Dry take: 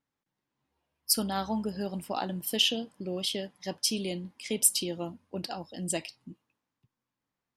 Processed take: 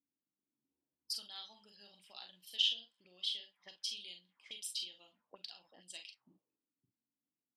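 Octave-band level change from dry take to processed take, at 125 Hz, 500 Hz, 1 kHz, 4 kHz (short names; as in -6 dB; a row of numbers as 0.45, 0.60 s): under -35 dB, -29.5 dB, -25.0 dB, -6.0 dB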